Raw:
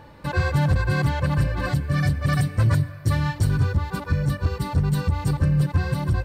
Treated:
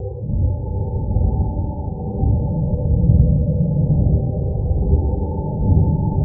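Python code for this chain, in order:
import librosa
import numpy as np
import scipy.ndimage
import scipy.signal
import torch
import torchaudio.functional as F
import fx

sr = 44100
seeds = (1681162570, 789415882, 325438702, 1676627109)

y = fx.paulstretch(x, sr, seeds[0], factor=5.3, window_s=0.05, from_s=3.69)
y = scipy.signal.sosfilt(scipy.signal.butter(16, 840.0, 'lowpass', fs=sr, output='sos'), y)
y = fx.rev_bloom(y, sr, seeds[1], attack_ms=890, drr_db=-3.0)
y = y * 10.0 ** (1.5 / 20.0)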